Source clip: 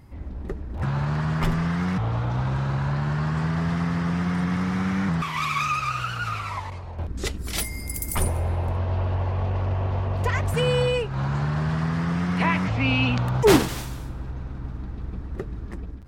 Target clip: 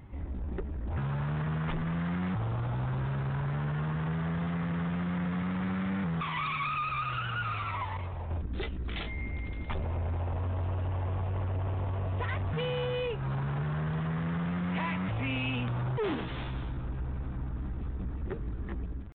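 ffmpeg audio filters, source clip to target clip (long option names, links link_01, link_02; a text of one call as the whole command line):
ffmpeg -i in.wav -af "acompressor=threshold=-27dB:ratio=2.5,atempo=0.84,asoftclip=type=tanh:threshold=-27.5dB,aresample=8000,aresample=44100" out.wav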